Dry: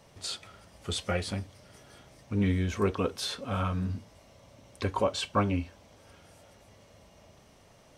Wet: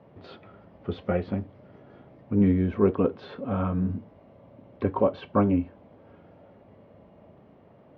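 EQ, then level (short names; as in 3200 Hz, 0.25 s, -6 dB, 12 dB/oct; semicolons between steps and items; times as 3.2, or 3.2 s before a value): BPF 240–4200 Hz; air absorption 270 m; tilt -4.5 dB/oct; +2.0 dB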